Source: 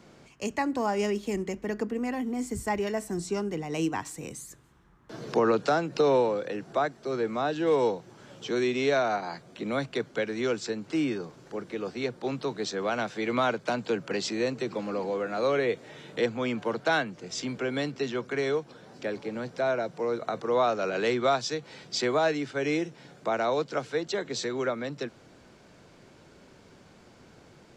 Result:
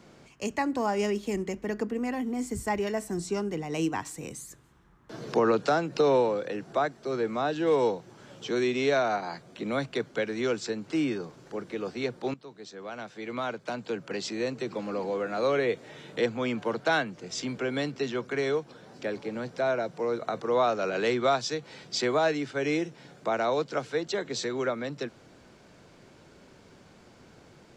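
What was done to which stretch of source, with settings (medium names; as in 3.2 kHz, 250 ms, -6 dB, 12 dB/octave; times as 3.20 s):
12.34–15.22 s: fade in, from -17 dB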